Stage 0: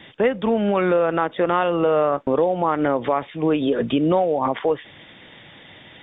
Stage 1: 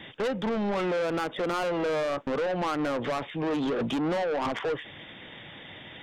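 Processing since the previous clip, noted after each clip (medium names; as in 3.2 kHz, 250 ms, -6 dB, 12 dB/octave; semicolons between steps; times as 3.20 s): saturation -25.5 dBFS, distortion -6 dB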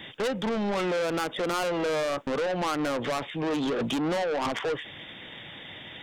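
treble shelf 4.5 kHz +10.5 dB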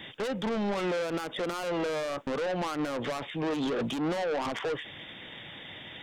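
peak limiter -24.5 dBFS, peak gain reduction 6.5 dB; trim -1.5 dB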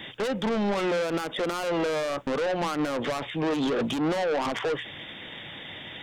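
hum notches 60/120/180 Hz; trim +4 dB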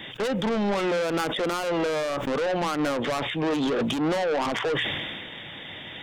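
decay stretcher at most 28 dB/s; trim +1 dB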